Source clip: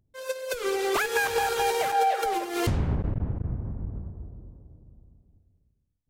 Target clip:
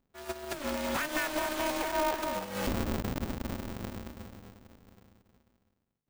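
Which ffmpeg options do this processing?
-af "aeval=exprs='val(0)*sgn(sin(2*PI*150*n/s))':c=same,volume=-6.5dB"

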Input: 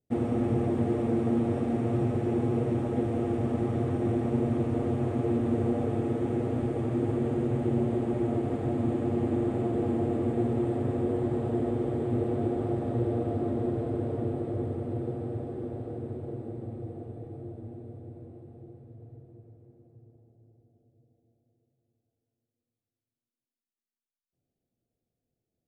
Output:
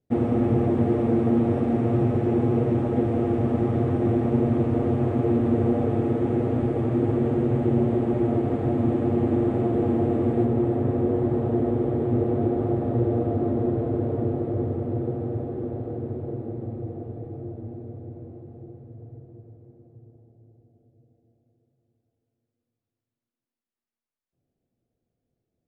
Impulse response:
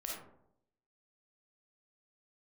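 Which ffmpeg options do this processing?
-af "asetnsamples=n=441:p=0,asendcmd='10.45 lowpass f 1500',lowpass=f=2.6k:p=1,volume=5.5dB"

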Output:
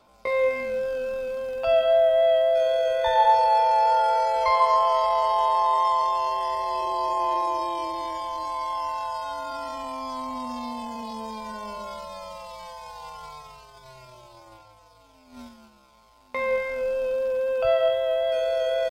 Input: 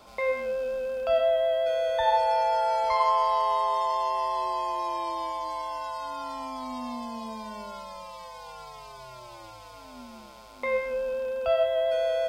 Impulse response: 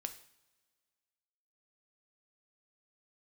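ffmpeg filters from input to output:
-af "agate=range=-12dB:threshold=-43dB:ratio=16:detection=peak,aphaser=in_gain=1:out_gain=1:delay=2.4:decay=0.3:speed=0.21:type=triangular,atempo=0.65,volume=3dB"

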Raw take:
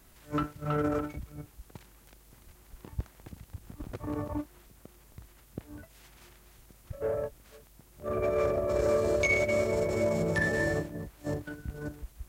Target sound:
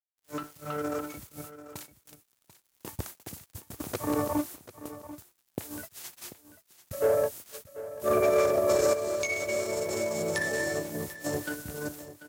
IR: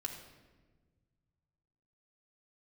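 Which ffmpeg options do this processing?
-filter_complex "[0:a]highpass=f=79:w=0.5412,highpass=f=79:w=1.3066,bass=f=250:g=-9,treble=f=4k:g=11,agate=range=-17dB:threshold=-49dB:ratio=16:detection=peak,asettb=1/sr,asplit=3[a][b][c];[a]atrim=end=8.934[d];[b]atrim=start=8.93:end=11.34,asetpts=PTS-STARTPTS,afade=t=in:d=0.004:c=qsin,afade=t=out:st=2.406:d=0.004:c=qsin,acompressor=threshold=-37dB:ratio=6[e];[c]atrim=start=11.336[f];[d][e]acrossfade=d=0.004:c1=hsin:c2=qsin[g];[g][f]acrossfade=d=0.004:c1=qsin:c2=hsin,alimiter=limit=-23.5dB:level=0:latency=1:release=375,dynaudnorm=f=530:g=5:m=11dB,acrusher=bits=7:mix=0:aa=0.5,aecho=1:1:740:0.178,volume=-2dB"

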